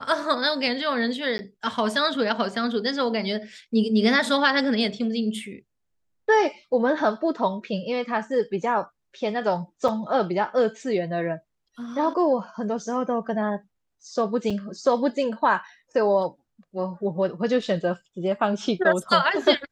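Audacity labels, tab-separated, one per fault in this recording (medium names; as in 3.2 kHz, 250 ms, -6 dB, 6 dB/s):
1.380000	1.390000	dropout 10 ms
9.880000	9.880000	dropout 4.8 ms
14.500000	14.510000	dropout 5.2 ms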